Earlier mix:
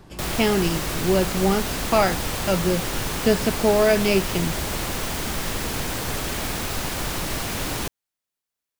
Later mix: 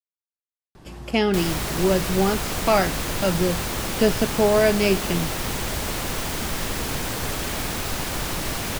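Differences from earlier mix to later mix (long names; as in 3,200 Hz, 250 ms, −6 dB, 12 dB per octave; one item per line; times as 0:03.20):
speech: entry +0.75 s
background: entry +1.15 s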